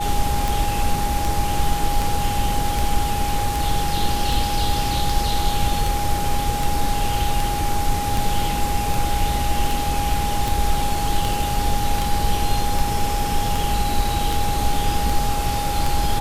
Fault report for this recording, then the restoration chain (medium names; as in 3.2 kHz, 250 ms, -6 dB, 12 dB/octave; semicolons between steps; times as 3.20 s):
tick 78 rpm
whine 820 Hz -24 dBFS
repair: de-click; band-stop 820 Hz, Q 30